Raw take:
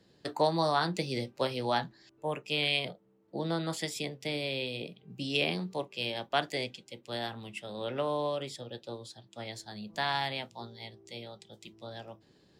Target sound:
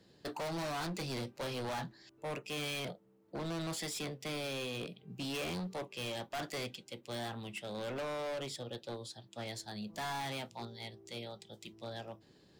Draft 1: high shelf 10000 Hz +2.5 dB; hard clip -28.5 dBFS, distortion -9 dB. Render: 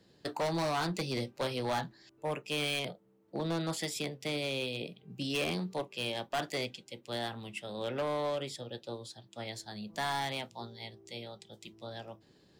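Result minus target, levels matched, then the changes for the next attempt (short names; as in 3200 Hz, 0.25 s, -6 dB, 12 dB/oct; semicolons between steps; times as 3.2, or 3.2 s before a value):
hard clip: distortion -5 dB
change: hard clip -36.5 dBFS, distortion -3 dB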